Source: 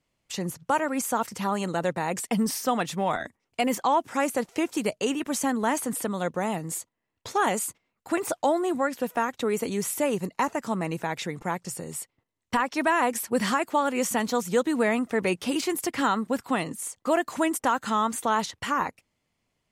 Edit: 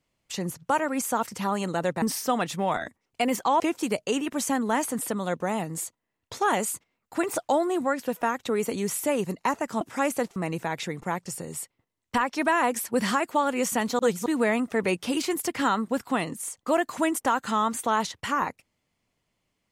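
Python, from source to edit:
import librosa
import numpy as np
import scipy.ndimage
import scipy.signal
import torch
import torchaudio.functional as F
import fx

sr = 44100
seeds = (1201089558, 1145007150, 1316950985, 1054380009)

y = fx.edit(x, sr, fx.cut(start_s=2.02, length_s=0.39),
    fx.move(start_s=3.99, length_s=0.55, to_s=10.75),
    fx.reverse_span(start_s=14.38, length_s=0.27), tone=tone)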